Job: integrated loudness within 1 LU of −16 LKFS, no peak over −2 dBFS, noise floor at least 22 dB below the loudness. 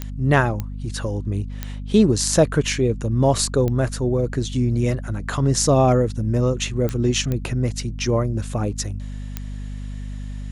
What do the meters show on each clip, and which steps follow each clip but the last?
number of clicks 7; mains hum 50 Hz; hum harmonics up to 250 Hz; level of the hum −28 dBFS; integrated loudness −21.0 LKFS; sample peak −2.5 dBFS; target loudness −16.0 LKFS
→ click removal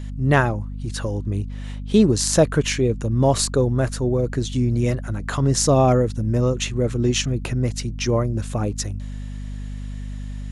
number of clicks 0; mains hum 50 Hz; hum harmonics up to 250 Hz; level of the hum −28 dBFS
→ mains-hum notches 50/100/150/200/250 Hz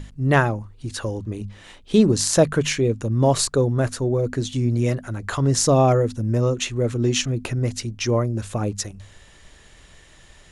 mains hum none found; integrated loudness −21.5 LKFS; sample peak −2.5 dBFS; target loudness −16.0 LKFS
→ level +5.5 dB
brickwall limiter −2 dBFS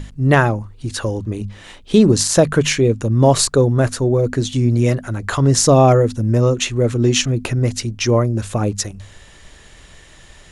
integrated loudness −16.5 LKFS; sample peak −2.0 dBFS; background noise floor −44 dBFS

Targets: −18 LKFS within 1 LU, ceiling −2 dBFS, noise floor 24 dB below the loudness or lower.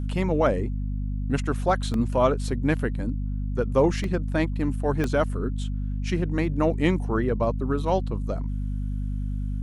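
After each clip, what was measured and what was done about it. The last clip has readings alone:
number of dropouts 3; longest dropout 1.6 ms; mains hum 50 Hz; hum harmonics up to 250 Hz; level of the hum −25 dBFS; integrated loudness −26.0 LKFS; sample peak −8.5 dBFS; target loudness −18.0 LKFS
→ repair the gap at 0:01.94/0:04.04/0:05.04, 1.6 ms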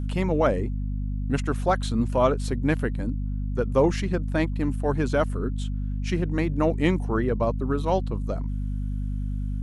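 number of dropouts 0; mains hum 50 Hz; hum harmonics up to 250 Hz; level of the hum −25 dBFS
→ hum removal 50 Hz, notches 5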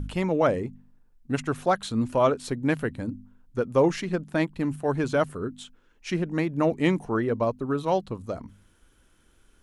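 mains hum none found; integrated loudness −26.5 LKFS; sample peak −9.5 dBFS; target loudness −18.0 LKFS
→ level +8.5 dB
brickwall limiter −2 dBFS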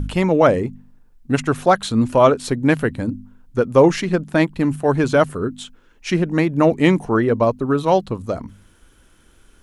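integrated loudness −18.0 LKFS; sample peak −2.0 dBFS; background noise floor −54 dBFS

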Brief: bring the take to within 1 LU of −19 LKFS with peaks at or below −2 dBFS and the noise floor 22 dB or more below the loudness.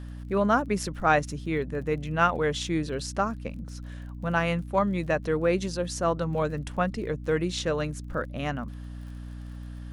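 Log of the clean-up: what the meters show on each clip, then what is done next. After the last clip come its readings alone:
crackle rate 31 per second; mains hum 60 Hz; hum harmonics up to 300 Hz; level of the hum −36 dBFS; integrated loudness −28.0 LKFS; sample peak −9.0 dBFS; target loudness −19.0 LKFS
→ click removal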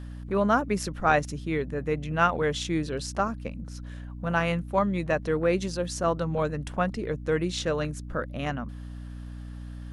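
crackle rate 0.10 per second; mains hum 60 Hz; hum harmonics up to 300 Hz; level of the hum −36 dBFS
→ mains-hum notches 60/120/180/240/300 Hz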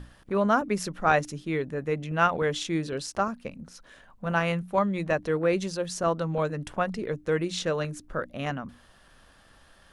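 mains hum none found; integrated loudness −28.0 LKFS; sample peak −9.0 dBFS; target loudness −19.0 LKFS
→ level +9 dB
brickwall limiter −2 dBFS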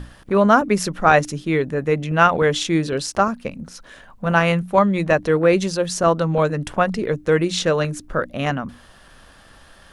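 integrated loudness −19.0 LKFS; sample peak −2.0 dBFS; background noise floor −48 dBFS

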